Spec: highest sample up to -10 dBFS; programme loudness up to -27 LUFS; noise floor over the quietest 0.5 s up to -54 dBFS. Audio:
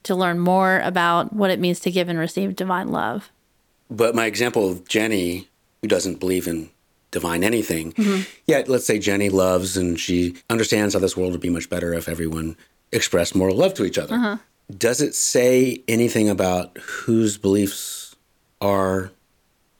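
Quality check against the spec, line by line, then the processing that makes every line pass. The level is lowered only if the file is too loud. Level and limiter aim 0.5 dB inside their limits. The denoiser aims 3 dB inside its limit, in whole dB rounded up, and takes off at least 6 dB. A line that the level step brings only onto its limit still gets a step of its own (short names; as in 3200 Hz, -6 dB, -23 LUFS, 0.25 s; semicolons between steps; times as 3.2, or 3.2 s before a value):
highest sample -3.5 dBFS: fail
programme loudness -21.0 LUFS: fail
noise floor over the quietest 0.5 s -64 dBFS: OK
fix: gain -6.5 dB; limiter -10.5 dBFS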